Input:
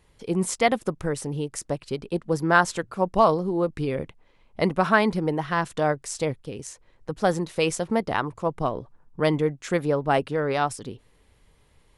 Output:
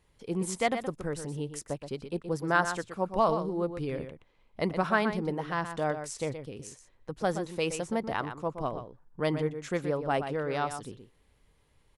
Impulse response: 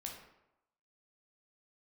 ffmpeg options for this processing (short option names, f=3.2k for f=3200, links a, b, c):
-filter_complex "[0:a]asplit=2[a][b];[b]adelay=122.4,volume=-9dB,highshelf=f=4k:g=-2.76[c];[a][c]amix=inputs=2:normalize=0,volume=-7dB"